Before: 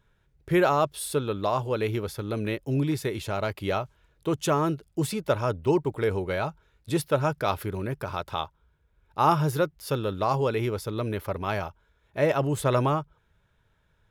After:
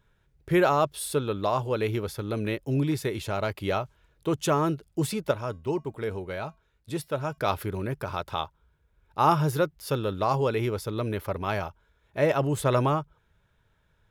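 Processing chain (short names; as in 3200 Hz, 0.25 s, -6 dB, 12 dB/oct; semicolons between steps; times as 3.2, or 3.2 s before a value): 5.31–7.38 resonator 220 Hz, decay 0.28 s, harmonics odd, mix 50%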